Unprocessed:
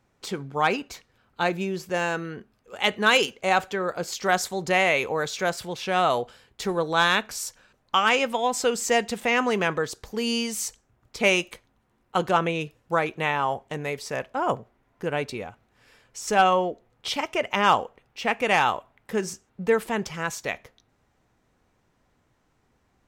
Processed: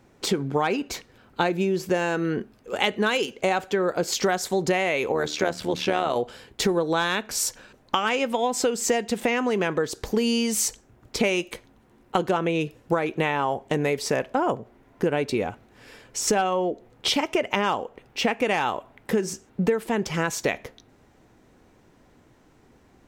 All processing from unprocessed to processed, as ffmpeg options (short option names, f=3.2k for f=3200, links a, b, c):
-filter_complex "[0:a]asettb=1/sr,asplit=3[a][b][c];[a]atrim=end=5.124[d];[b]atrim=start=5.12:end=6.16,asetpts=PTS-STARTPTS,afade=t=in:d=0.004:c=qsin,afade=t=out:st=1.036:d=0.004:c=qsin,bandreject=f=60:t=h:w=6,bandreject=f=120:t=h:w=6,bandreject=f=180:t=h:w=6,bandreject=f=240:t=h:w=6,bandreject=f=300:t=h:w=6,tremolo=f=76:d=0.71,acrossover=split=6100[e][f];[f]acompressor=threshold=-49dB:ratio=4:attack=1:release=60[g];[e][g]amix=inputs=2:normalize=0[h];[c]atrim=start=6.156[i];[d][h]acrossfade=d=0.004:c1=hsin:c2=qsin[j];[j][i]acrossfade=d=0.004:c1=qsin:c2=hsin,equalizer=f=320:t=o:w=1.4:g=6.5,acompressor=threshold=-28dB:ratio=10,equalizer=f=1.2k:t=o:w=0.26:g=-2.5,volume=8.5dB"